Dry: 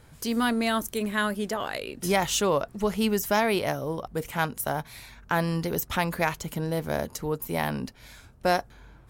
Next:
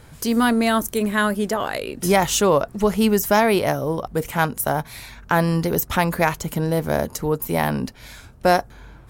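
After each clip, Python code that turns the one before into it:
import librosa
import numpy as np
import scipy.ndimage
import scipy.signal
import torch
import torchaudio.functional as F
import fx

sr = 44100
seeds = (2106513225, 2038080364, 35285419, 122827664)

y = fx.dynamic_eq(x, sr, hz=3300.0, q=0.74, threshold_db=-44.0, ratio=4.0, max_db=-4)
y = y * 10.0 ** (7.5 / 20.0)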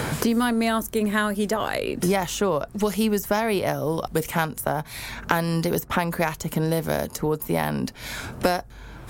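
y = fx.band_squash(x, sr, depth_pct=100)
y = y * 10.0 ** (-4.5 / 20.0)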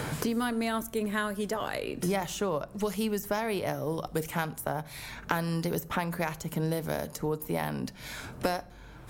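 y = fx.room_shoebox(x, sr, seeds[0], volume_m3=2000.0, walls='furnished', distance_m=0.43)
y = y * 10.0 ** (-7.5 / 20.0)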